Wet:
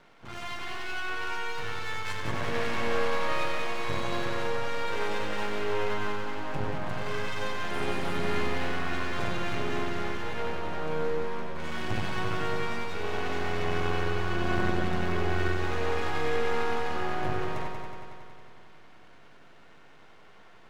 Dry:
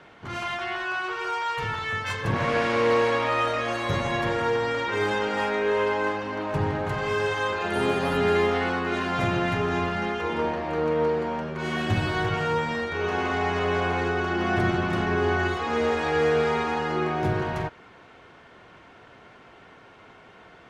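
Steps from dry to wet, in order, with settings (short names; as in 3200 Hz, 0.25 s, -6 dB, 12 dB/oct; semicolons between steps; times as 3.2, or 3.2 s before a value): half-wave rectifier; on a send: multi-head echo 92 ms, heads first and second, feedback 68%, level -9 dB; on the sum: gain -4 dB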